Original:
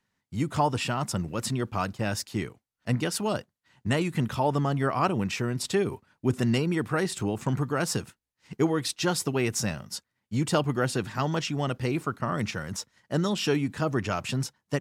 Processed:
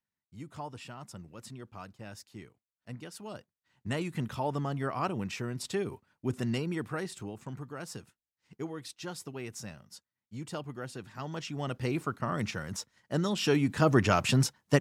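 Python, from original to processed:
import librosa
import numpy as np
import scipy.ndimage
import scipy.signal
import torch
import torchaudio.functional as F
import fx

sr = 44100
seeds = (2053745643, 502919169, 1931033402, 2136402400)

y = fx.gain(x, sr, db=fx.line((3.14, -16.5), (3.98, -7.0), (6.82, -7.0), (7.46, -14.0), (11.05, -14.0), (11.87, -3.5), (13.31, -3.5), (13.91, 4.0)))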